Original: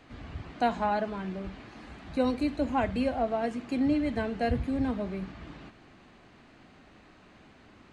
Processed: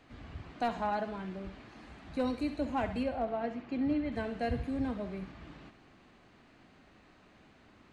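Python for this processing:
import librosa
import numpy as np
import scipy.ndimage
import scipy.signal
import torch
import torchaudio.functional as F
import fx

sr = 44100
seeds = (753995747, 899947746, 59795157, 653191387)

p1 = fx.gaussian_blur(x, sr, sigma=1.8, at=(3.03, 4.12))
p2 = np.clip(10.0 ** (19.0 / 20.0) * p1, -1.0, 1.0) / 10.0 ** (19.0 / 20.0)
p3 = p2 + fx.echo_thinned(p2, sr, ms=67, feedback_pct=53, hz=420.0, wet_db=-11.5, dry=0)
y = F.gain(torch.from_numpy(p3), -5.0).numpy()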